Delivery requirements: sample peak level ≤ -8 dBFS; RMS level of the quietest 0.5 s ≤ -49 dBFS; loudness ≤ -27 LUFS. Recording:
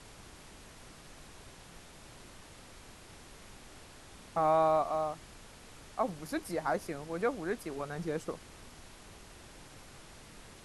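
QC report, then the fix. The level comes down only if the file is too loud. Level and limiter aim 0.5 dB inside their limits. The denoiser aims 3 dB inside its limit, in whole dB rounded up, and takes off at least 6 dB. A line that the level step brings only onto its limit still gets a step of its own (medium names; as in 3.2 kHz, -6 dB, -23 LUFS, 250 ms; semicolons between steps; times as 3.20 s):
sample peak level -17.5 dBFS: pass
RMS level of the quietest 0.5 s -53 dBFS: pass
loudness -33.5 LUFS: pass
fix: none needed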